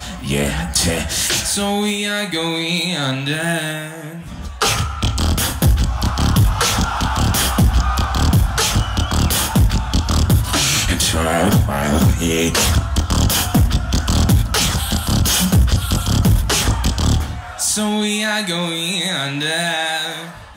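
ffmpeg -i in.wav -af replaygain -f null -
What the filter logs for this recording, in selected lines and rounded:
track_gain = -1.2 dB
track_peak = 0.336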